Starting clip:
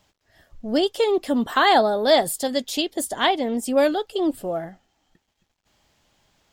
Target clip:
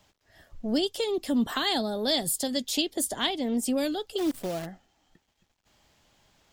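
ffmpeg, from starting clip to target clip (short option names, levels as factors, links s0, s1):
-filter_complex "[0:a]acrossover=split=280|3000[s0][s1][s2];[s1]acompressor=threshold=0.0251:ratio=6[s3];[s0][s3][s2]amix=inputs=3:normalize=0,asplit=3[s4][s5][s6];[s4]afade=t=out:st=4.17:d=0.02[s7];[s5]acrusher=bits=7:dc=4:mix=0:aa=0.000001,afade=t=in:st=4.17:d=0.02,afade=t=out:st=4.65:d=0.02[s8];[s6]afade=t=in:st=4.65:d=0.02[s9];[s7][s8][s9]amix=inputs=3:normalize=0"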